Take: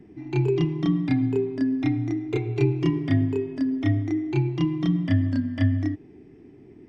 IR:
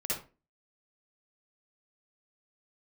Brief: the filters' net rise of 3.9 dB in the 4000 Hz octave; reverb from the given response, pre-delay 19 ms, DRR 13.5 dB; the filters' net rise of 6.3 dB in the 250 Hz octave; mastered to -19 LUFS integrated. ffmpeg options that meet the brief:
-filter_complex "[0:a]equalizer=f=250:t=o:g=7.5,equalizer=f=4k:t=o:g=5.5,asplit=2[a][b];[1:a]atrim=start_sample=2205,adelay=19[c];[b][c]afir=irnorm=-1:irlink=0,volume=-18dB[d];[a][d]amix=inputs=2:normalize=0,volume=1dB"

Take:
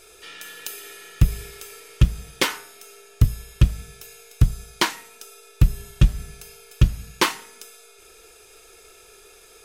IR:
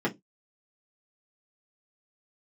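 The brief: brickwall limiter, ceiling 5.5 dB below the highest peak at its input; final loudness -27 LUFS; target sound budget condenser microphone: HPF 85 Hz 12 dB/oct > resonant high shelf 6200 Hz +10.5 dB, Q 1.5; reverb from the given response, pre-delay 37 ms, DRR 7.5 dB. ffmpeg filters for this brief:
-filter_complex "[0:a]alimiter=limit=-10.5dB:level=0:latency=1,asplit=2[a][b];[1:a]atrim=start_sample=2205,adelay=37[c];[b][c]afir=irnorm=-1:irlink=0,volume=-17.5dB[d];[a][d]amix=inputs=2:normalize=0,highpass=85,highshelf=f=6.2k:t=q:w=1.5:g=10.5,volume=0.5dB"

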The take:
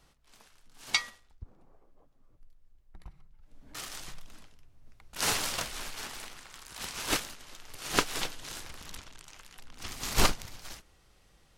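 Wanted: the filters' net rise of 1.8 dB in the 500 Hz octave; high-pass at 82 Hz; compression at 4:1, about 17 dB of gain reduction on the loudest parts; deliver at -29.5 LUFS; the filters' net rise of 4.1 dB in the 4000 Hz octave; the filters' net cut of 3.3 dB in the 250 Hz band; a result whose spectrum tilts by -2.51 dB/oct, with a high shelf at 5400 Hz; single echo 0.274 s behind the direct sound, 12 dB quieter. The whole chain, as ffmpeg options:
-af "highpass=82,equalizer=f=250:t=o:g=-6,equalizer=f=500:t=o:g=4,equalizer=f=4k:t=o:g=8,highshelf=f=5.4k:g=-7,acompressor=threshold=-43dB:ratio=4,aecho=1:1:274:0.251,volume=15.5dB"

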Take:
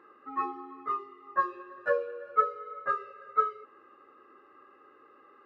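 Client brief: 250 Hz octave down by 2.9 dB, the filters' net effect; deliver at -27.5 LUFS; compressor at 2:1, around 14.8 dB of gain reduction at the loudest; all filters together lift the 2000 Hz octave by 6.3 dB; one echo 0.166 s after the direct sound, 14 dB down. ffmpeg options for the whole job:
-af "equalizer=f=250:t=o:g=-4.5,equalizer=f=2k:t=o:g=8.5,acompressor=threshold=-44dB:ratio=2,aecho=1:1:166:0.2,volume=13.5dB"

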